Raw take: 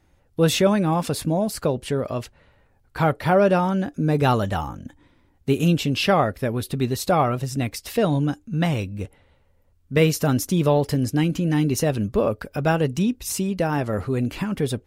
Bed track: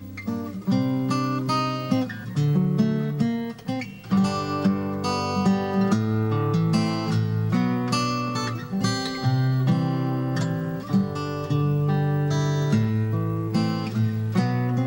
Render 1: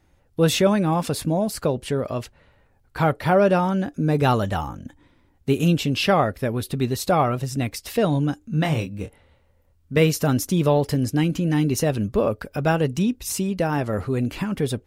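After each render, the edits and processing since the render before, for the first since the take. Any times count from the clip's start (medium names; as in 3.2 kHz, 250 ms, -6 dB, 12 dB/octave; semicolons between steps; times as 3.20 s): 8.39–9.97 s: doubling 26 ms -6 dB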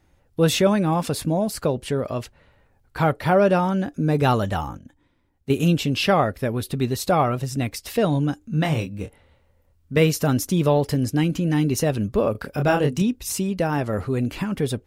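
4.78–5.50 s: gain -8 dB; 12.32–13.02 s: doubling 28 ms -3.5 dB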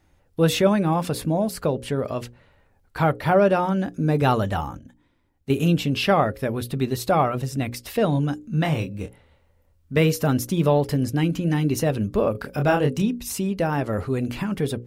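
hum notches 60/120/180/240/300/360/420/480/540 Hz; dynamic bell 6.7 kHz, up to -4 dB, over -42 dBFS, Q 0.72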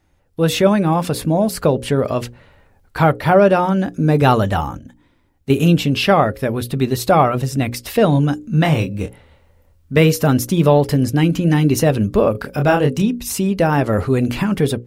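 level rider gain up to 9 dB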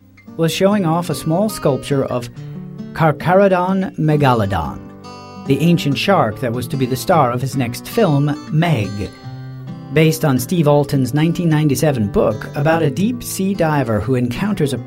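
add bed track -9 dB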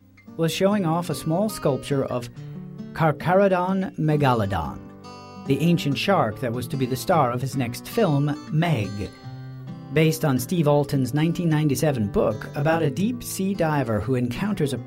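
trim -6.5 dB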